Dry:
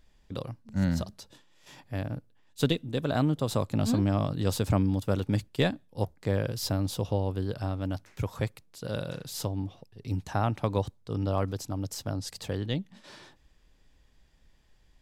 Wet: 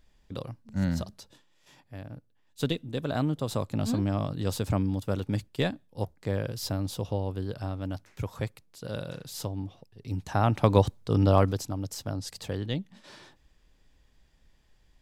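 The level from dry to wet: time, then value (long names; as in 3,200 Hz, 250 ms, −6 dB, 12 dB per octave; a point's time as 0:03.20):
0:01.19 −1 dB
0:01.98 −9 dB
0:02.78 −2 dB
0:10.11 −2 dB
0:10.70 +7.5 dB
0:11.37 +7.5 dB
0:11.78 −0.5 dB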